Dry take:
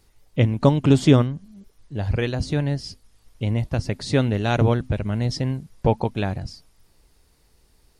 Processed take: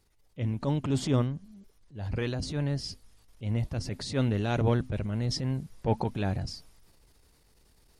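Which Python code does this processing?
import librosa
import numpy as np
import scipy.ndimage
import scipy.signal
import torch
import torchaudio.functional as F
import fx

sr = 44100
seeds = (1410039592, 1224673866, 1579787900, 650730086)

y = fx.transient(x, sr, attack_db=-10, sustain_db=4)
y = fx.rider(y, sr, range_db=3, speed_s=2.0)
y = y * 10.0 ** (-6.0 / 20.0)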